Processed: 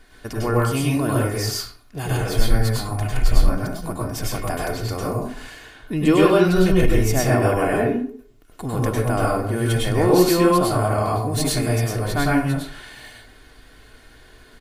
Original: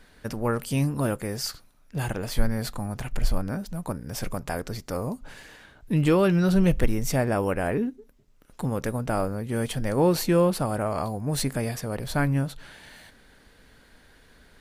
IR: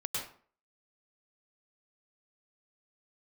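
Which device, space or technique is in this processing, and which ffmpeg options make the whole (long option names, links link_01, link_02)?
microphone above a desk: -filter_complex "[0:a]aecho=1:1:2.8:0.56[link_01];[1:a]atrim=start_sample=2205[link_02];[link_01][link_02]afir=irnorm=-1:irlink=0,volume=3dB"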